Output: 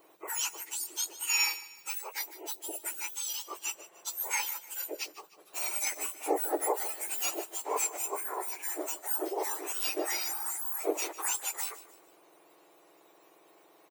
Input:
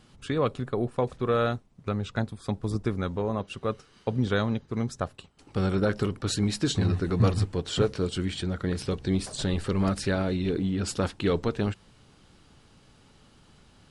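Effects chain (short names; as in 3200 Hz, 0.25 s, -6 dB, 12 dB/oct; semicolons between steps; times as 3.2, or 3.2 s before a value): spectrum mirrored in octaves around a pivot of 1800 Hz; on a send: feedback echo 0.151 s, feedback 39%, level -16.5 dB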